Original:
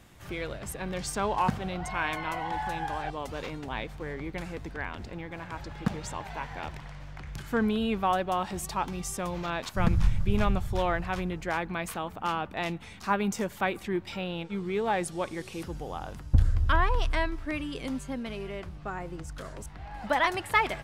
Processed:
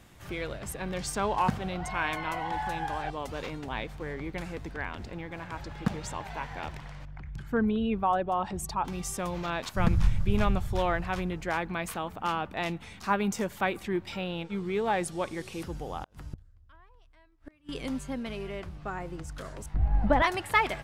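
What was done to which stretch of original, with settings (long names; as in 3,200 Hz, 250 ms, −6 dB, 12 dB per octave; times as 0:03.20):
0:07.05–0:08.85: spectral envelope exaggerated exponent 1.5
0:16.01–0:17.69: gate with flip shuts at −25 dBFS, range −33 dB
0:19.74–0:20.22: spectral tilt −4.5 dB per octave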